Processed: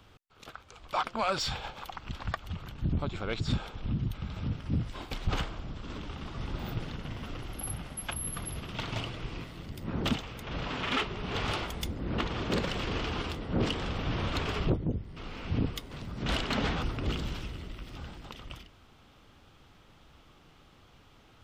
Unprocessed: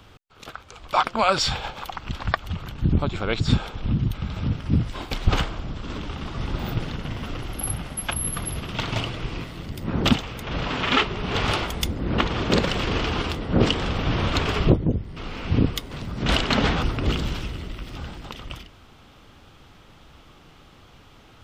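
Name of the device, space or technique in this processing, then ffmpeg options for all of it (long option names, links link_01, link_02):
saturation between pre-emphasis and de-emphasis: -af "highshelf=frequency=4000:gain=9,asoftclip=type=tanh:threshold=-11dB,highshelf=frequency=4000:gain=-9,volume=-8dB"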